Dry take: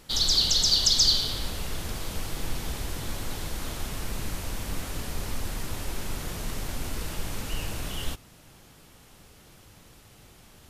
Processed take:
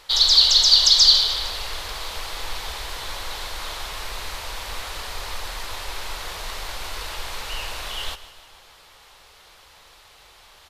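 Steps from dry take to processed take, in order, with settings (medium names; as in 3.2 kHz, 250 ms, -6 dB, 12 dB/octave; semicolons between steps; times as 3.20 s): graphic EQ 125/250/500/1000/2000/4000 Hz -12/-12/+4/+9/+5/+10 dB; on a send: feedback delay 153 ms, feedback 54%, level -15.5 dB; on the sum: trim -1.5 dB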